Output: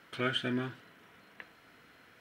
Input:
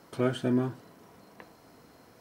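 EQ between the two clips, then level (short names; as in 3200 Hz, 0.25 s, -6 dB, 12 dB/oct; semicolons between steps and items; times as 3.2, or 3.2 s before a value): dynamic EQ 4400 Hz, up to +5 dB, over -56 dBFS, Q 0.94; band shelf 2200 Hz +13 dB; -7.5 dB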